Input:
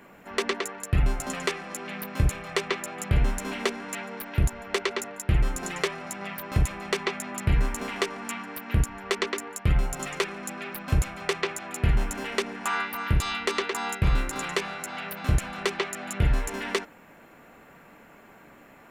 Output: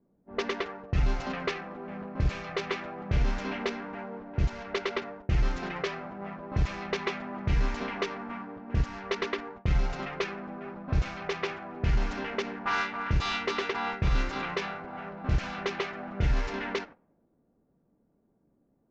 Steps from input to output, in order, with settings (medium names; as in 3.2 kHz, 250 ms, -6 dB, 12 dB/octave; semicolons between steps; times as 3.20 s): CVSD coder 32 kbps; gate -43 dBFS, range -13 dB; level-controlled noise filter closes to 340 Hz, open at -22 dBFS; peak limiter -17.5 dBFS, peak gain reduction 6.5 dB